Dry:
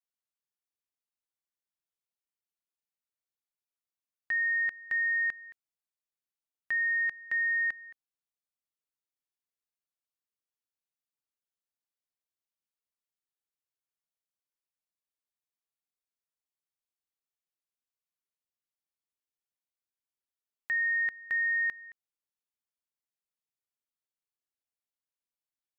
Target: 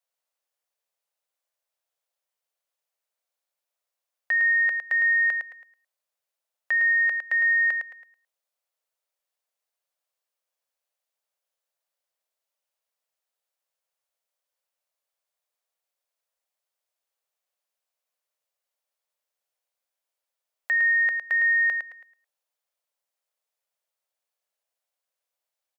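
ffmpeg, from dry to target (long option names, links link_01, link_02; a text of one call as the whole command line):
ffmpeg -i in.wav -af "lowshelf=frequency=380:width_type=q:width=3:gain=-13.5,aecho=1:1:108|216|324:0.501|0.11|0.0243,volume=6dB" out.wav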